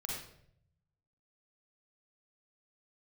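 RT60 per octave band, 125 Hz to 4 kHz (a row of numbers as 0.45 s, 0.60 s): 1.4 s, 0.90 s, 0.75 s, 0.60 s, 0.60 s, 0.50 s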